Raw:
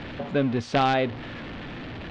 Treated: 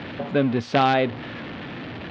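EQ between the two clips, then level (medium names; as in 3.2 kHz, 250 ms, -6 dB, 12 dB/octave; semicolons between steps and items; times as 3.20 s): band-pass 100–5400 Hz; +3.0 dB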